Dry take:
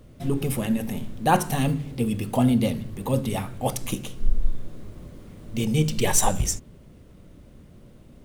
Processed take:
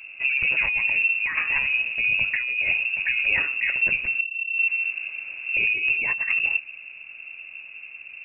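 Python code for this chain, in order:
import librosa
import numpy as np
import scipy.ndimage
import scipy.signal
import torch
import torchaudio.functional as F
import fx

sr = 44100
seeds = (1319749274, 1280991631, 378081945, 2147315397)

y = fx.low_shelf(x, sr, hz=160.0, db=3.5)
y = fx.over_compress(y, sr, threshold_db=-24.0, ratio=-1.0)
y = fx.freq_invert(y, sr, carrier_hz=2700)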